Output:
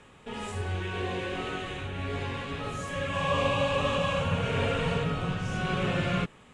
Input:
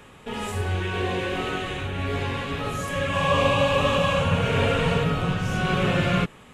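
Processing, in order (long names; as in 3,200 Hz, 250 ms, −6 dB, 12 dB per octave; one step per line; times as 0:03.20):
Butterworth low-pass 10,000 Hz 36 dB per octave
level −6 dB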